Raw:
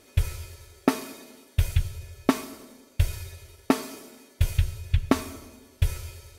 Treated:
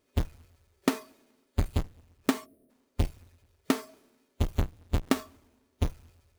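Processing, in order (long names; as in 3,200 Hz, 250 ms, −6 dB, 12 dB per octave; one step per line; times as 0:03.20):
each half-wave held at its own peak
gain on a spectral selection 0:02.45–0:02.70, 720–8,800 Hz −20 dB
noise reduction from a noise print of the clip's start 14 dB
level −8.5 dB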